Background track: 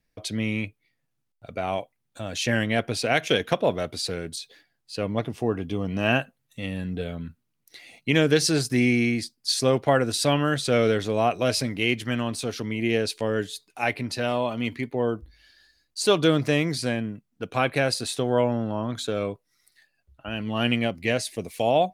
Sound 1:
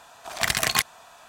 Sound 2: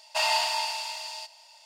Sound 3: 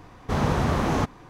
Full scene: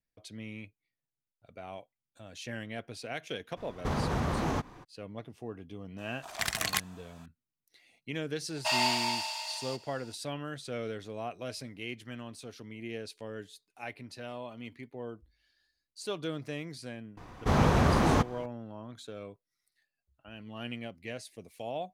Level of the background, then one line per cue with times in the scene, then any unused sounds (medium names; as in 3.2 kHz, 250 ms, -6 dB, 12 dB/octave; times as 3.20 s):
background track -16 dB
3.56 s: add 3 -3.5 dB, fades 0.02 s + peak limiter -18.5 dBFS
5.98 s: add 1 -8.5 dB
8.50 s: add 2 -3 dB
17.17 s: add 3 -1 dB